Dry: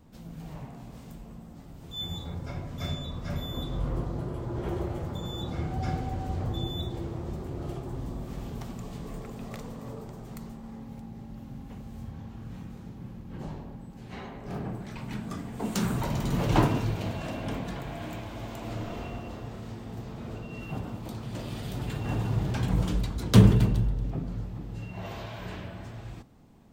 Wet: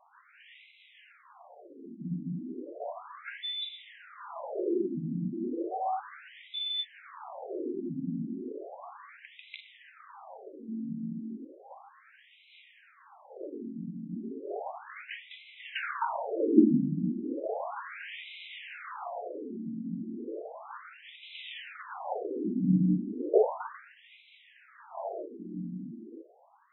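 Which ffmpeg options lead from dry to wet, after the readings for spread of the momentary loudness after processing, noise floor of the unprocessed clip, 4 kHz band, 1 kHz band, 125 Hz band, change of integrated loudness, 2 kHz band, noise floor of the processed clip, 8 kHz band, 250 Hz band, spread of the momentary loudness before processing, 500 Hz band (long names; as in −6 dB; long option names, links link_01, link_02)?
21 LU, −45 dBFS, +0.5 dB, 0.0 dB, −11.5 dB, −2.0 dB, −0.5 dB, −60 dBFS, below −30 dB, 0.0 dB, 15 LU, +2.5 dB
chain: -af "bandreject=frequency=69.66:width_type=h:width=4,bandreject=frequency=139.32:width_type=h:width=4,bandreject=frequency=208.98:width_type=h:width=4,bandreject=frequency=278.64:width_type=h:width=4,bandreject=frequency=348.3:width_type=h:width=4,bandreject=frequency=417.96:width_type=h:width=4,bandreject=frequency=487.62:width_type=h:width=4,bandreject=frequency=557.28:width_type=h:width=4,bandreject=frequency=626.94:width_type=h:width=4,bandreject=frequency=696.6:width_type=h:width=4,bandreject=frequency=766.26:width_type=h:width=4,bandreject=frequency=835.92:width_type=h:width=4,bandreject=frequency=905.58:width_type=h:width=4,bandreject=frequency=975.24:width_type=h:width=4,bandreject=frequency=1044.9:width_type=h:width=4,bandreject=frequency=1114.56:width_type=h:width=4,bandreject=frequency=1184.22:width_type=h:width=4,bandreject=frequency=1253.88:width_type=h:width=4,bandreject=frequency=1323.54:width_type=h:width=4,bandreject=frequency=1393.2:width_type=h:width=4,bandreject=frequency=1462.86:width_type=h:width=4,bandreject=frequency=1532.52:width_type=h:width=4,bandreject=frequency=1602.18:width_type=h:width=4,bandreject=frequency=1671.84:width_type=h:width=4,bandreject=frequency=1741.5:width_type=h:width=4,bandreject=frequency=1811.16:width_type=h:width=4,bandreject=frequency=1880.82:width_type=h:width=4,bandreject=frequency=1950.48:width_type=h:width=4,bandreject=frequency=2020.14:width_type=h:width=4,bandreject=frequency=2089.8:width_type=h:width=4,bandreject=frequency=2159.46:width_type=h:width=4,bandreject=frequency=2229.12:width_type=h:width=4,bandreject=frequency=2298.78:width_type=h:width=4,bandreject=frequency=2368.44:width_type=h:width=4,afftfilt=real='re*between(b*sr/1024,220*pow(2900/220,0.5+0.5*sin(2*PI*0.34*pts/sr))/1.41,220*pow(2900/220,0.5+0.5*sin(2*PI*0.34*pts/sr))*1.41)':imag='im*between(b*sr/1024,220*pow(2900/220,0.5+0.5*sin(2*PI*0.34*pts/sr))/1.41,220*pow(2900/220,0.5+0.5*sin(2*PI*0.34*pts/sr))*1.41)':win_size=1024:overlap=0.75,volume=8dB"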